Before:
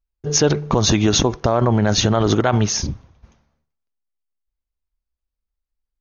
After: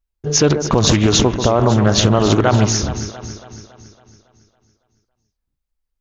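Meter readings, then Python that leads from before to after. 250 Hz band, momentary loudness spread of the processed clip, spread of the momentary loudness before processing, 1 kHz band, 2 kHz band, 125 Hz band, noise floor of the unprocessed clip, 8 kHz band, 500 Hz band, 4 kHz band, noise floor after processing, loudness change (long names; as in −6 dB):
+3.0 dB, 13 LU, 5 LU, +3.0 dB, +2.5 dB, +3.5 dB, −84 dBFS, can't be measured, +3.0 dB, +2.5 dB, −78 dBFS, +2.5 dB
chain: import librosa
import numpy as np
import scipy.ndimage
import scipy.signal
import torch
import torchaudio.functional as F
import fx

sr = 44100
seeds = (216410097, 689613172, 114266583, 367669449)

y = fx.echo_alternate(x, sr, ms=139, hz=1600.0, feedback_pct=72, wet_db=-8.5)
y = fx.doppler_dist(y, sr, depth_ms=0.3)
y = y * librosa.db_to_amplitude(2.5)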